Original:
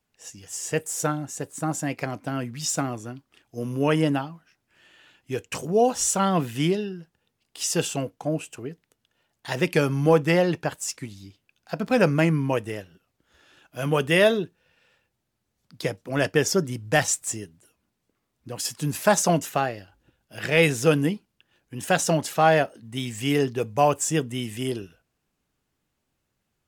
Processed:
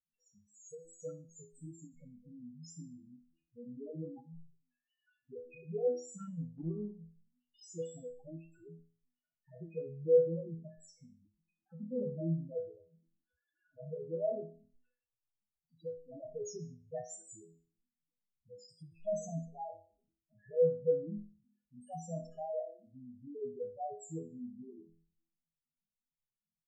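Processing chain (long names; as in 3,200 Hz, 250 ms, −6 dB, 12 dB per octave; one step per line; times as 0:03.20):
linear-phase brick-wall low-pass 9,900 Hz
parametric band 870 Hz −3 dB 0.28 octaves
on a send: echo with shifted repeats 121 ms, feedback 51%, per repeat −140 Hz, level −22.5 dB
on the sum: spectral peaks only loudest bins 2
Butterworth band-reject 1,900 Hz, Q 3.6
0:06.16–0:07.62: transient designer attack +7 dB, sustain +3 dB
resonators tuned to a chord E3 major, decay 0.41 s
every ending faded ahead of time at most 150 dB per second
level +4.5 dB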